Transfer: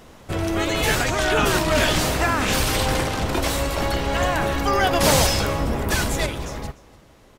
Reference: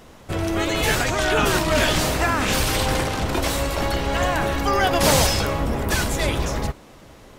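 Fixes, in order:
echo removal 295 ms −21 dB
level 0 dB, from 0:06.26 +6 dB

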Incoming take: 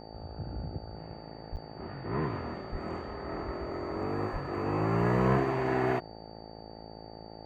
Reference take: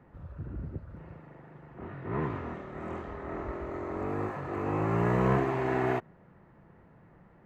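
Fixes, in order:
hum removal 54.8 Hz, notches 16
notch filter 4,600 Hz, Q 30
0:01.51–0:01.63: high-pass filter 140 Hz 24 dB per octave
0:02.71–0:02.83: high-pass filter 140 Hz 24 dB per octave
0:04.32–0:04.44: high-pass filter 140 Hz 24 dB per octave
repair the gap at 0:01.56, 8.6 ms

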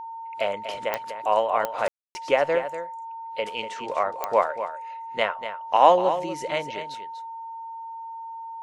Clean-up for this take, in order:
click removal
notch filter 910 Hz, Q 30
ambience match 0:01.88–0:02.15
echo removal 242 ms −10.5 dB

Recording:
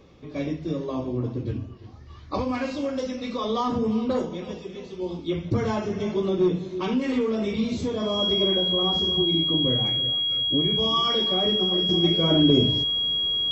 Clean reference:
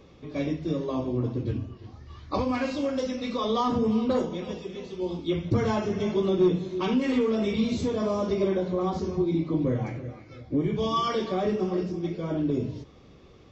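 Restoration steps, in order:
notch filter 3,300 Hz, Q 30
level 0 dB, from 0:11.89 −8 dB

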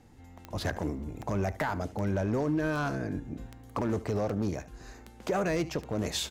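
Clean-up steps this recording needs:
clipped peaks rebuilt −22 dBFS
click removal
echo removal 74 ms −17.5 dB

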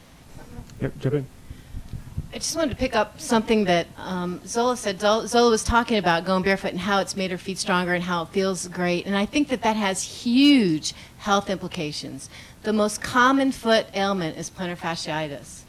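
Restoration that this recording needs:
clipped peaks rebuilt −7.5 dBFS
click removal

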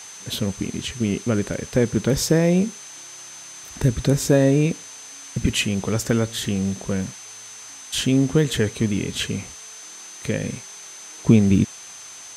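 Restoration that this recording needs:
notch filter 6,200 Hz, Q 30
noise reduction from a noise print 26 dB

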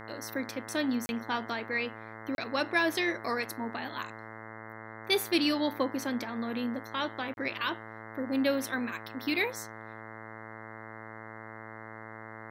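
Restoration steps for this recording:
hum removal 110.6 Hz, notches 19
repair the gap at 0:01.06/0:02.35/0:07.34, 31 ms

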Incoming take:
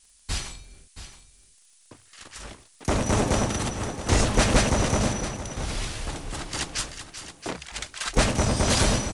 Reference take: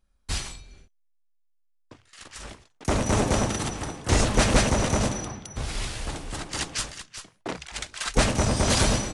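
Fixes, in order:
click removal
noise reduction from a noise print 9 dB
echo removal 673 ms −12.5 dB

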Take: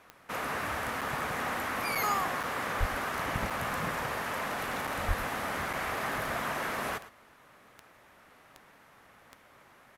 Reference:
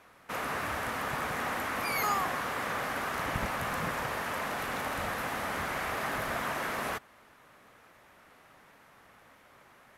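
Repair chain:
click removal
high-pass at the plosives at 0:02.79/0:05.07
repair the gap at 0:01.01/0:01.95/0:02.43/0:03.50/0:04.87/0:05.73, 5.8 ms
echo removal 110 ms −15.5 dB

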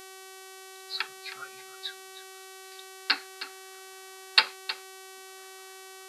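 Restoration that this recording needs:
hum removal 380.3 Hz, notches 34
echo removal 315 ms −13.5 dB

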